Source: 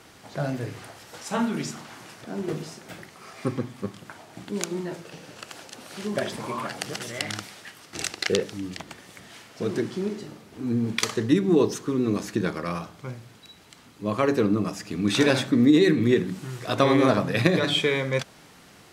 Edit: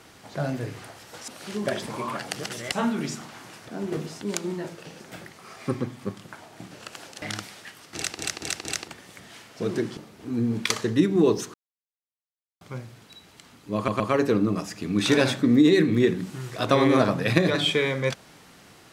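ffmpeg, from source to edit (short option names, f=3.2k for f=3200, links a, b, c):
-filter_complex "[0:a]asplit=16[a][b][c][d][e][f][g][h][i][j][k][l][m][n][o][p];[a]atrim=end=1.282[q];[b]atrim=start=5.778:end=7.222[r];[c]atrim=start=1.278:end=2.772[s];[d]atrim=start=4.478:end=5.272[t];[e]atrim=start=2.768:end=4.482[u];[f]atrim=start=5.268:end=5.782[v];[g]atrim=start=7.218:end=8.192[w];[h]atrim=start=7.958:end=8.192[x];[i]atrim=start=7.958:end=8.192[y];[j]atrim=start=7.958:end=8.192[z];[k]atrim=start=8.878:end=9.972[aa];[l]atrim=start=10.298:end=11.87,asetpts=PTS-STARTPTS,afade=t=out:st=1.568:d=0.004:c=hsin[ab];[m]atrim=start=11.87:end=12.94,asetpts=PTS-STARTPTS,volume=0[ac];[n]atrim=start=12.94:end=14.212,asetpts=PTS-STARTPTS,afade=t=in:d=0.004:c=hsin[ad];[o]atrim=start=14.088:end=14.212[ae];[p]atrim=start=14.088[af];[q][r]acrossfade=d=0.004:c1=hsin:c2=hsin[ag];[ag][s]acrossfade=d=0.004:c1=hsin:c2=hsin[ah];[ah][t]acrossfade=d=0.004:c1=hsin:c2=hsin[ai];[ai][u]acrossfade=d=0.004:c1=hsin:c2=hsin[aj];[aj][v]acrossfade=d=0.004:c1=hsin:c2=hsin[ak];[ak][w]acrossfade=d=0.004:c1=hsin:c2=hsin[al];[al][x]acrossfade=d=0.004:c1=hsin:c2=hsin[am];[am][y]acrossfade=d=0.004:c1=hsin:c2=hsin[an];[an][z]acrossfade=d=0.004:c1=hsin:c2=hsin[ao];[ao][aa]acrossfade=d=0.004:c1=hsin:c2=hsin[ap];[ab][ac][ad]concat=n=3:v=0:a=1[aq];[ap][aq]acrossfade=d=0.004:c1=hsin:c2=hsin[ar];[ar][ae]acrossfade=d=0.004:c1=hsin:c2=hsin[as];[as][af]acrossfade=d=0.004:c1=hsin:c2=hsin"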